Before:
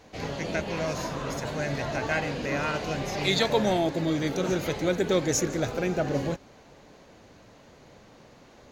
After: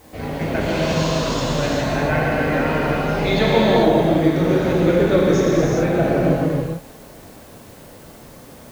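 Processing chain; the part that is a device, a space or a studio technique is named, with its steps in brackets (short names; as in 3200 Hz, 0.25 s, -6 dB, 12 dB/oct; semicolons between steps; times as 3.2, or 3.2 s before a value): cassette deck with a dirty head (tape spacing loss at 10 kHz 25 dB; wow and flutter; white noise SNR 30 dB); 0.61–1.68 band shelf 4800 Hz +12.5 dB; non-linear reverb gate 0.46 s flat, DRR -5 dB; gain +5.5 dB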